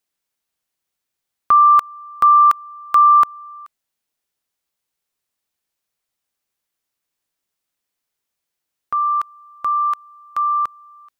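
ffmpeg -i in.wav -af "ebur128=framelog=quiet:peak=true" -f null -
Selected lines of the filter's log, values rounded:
Integrated loudness:
  I:         -15.1 LUFS
  Threshold: -26.0 LUFS
Loudness range:
  LRA:        12.8 LU
  Threshold: -38.3 LUFS
  LRA low:   -27.5 LUFS
  LRA high:  -14.7 LUFS
True peak:
  Peak:       -5.8 dBFS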